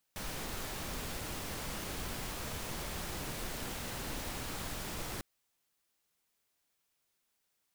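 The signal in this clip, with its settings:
noise pink, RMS −40 dBFS 5.05 s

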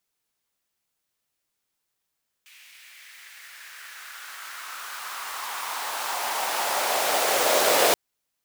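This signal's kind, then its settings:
filter sweep on noise pink, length 5.48 s highpass, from 2,400 Hz, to 510 Hz, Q 2.7, exponential, gain ramp +32 dB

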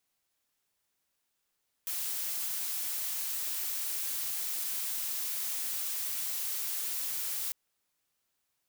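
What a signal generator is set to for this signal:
noise blue, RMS −34.5 dBFS 5.65 s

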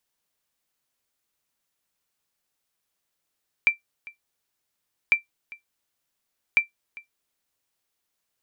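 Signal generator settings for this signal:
ping with an echo 2,350 Hz, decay 0.13 s, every 1.45 s, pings 3, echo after 0.40 s, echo −22.5 dB −9 dBFS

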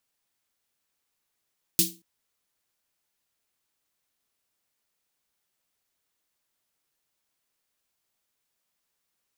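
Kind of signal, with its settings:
synth snare length 0.23 s, tones 180 Hz, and 330 Hz, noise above 3,200 Hz, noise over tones 10 dB, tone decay 0.33 s, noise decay 0.25 s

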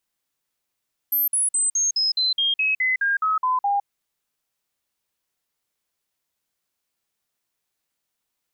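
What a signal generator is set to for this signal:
stepped sweep 12,900 Hz down, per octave 3, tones 13, 0.16 s, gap 0.05 s −18 dBFS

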